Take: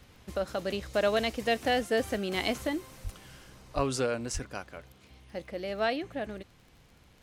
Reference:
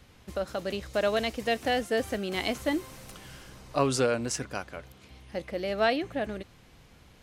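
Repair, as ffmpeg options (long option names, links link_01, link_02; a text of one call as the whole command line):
ffmpeg -i in.wav -filter_complex "[0:a]adeclick=threshold=4,asplit=3[link_01][link_02][link_03];[link_01]afade=type=out:start_time=3.03:duration=0.02[link_04];[link_02]highpass=frequency=140:width=0.5412,highpass=frequency=140:width=1.3066,afade=type=in:start_time=3.03:duration=0.02,afade=type=out:start_time=3.15:duration=0.02[link_05];[link_03]afade=type=in:start_time=3.15:duration=0.02[link_06];[link_04][link_05][link_06]amix=inputs=3:normalize=0,asplit=3[link_07][link_08][link_09];[link_07]afade=type=out:start_time=3.75:duration=0.02[link_10];[link_08]highpass=frequency=140:width=0.5412,highpass=frequency=140:width=1.3066,afade=type=in:start_time=3.75:duration=0.02,afade=type=out:start_time=3.87:duration=0.02[link_11];[link_09]afade=type=in:start_time=3.87:duration=0.02[link_12];[link_10][link_11][link_12]amix=inputs=3:normalize=0,asplit=3[link_13][link_14][link_15];[link_13]afade=type=out:start_time=4.33:duration=0.02[link_16];[link_14]highpass=frequency=140:width=0.5412,highpass=frequency=140:width=1.3066,afade=type=in:start_time=4.33:duration=0.02,afade=type=out:start_time=4.45:duration=0.02[link_17];[link_15]afade=type=in:start_time=4.45:duration=0.02[link_18];[link_16][link_17][link_18]amix=inputs=3:normalize=0,asetnsamples=nb_out_samples=441:pad=0,asendcmd='2.67 volume volume 4dB',volume=0dB" out.wav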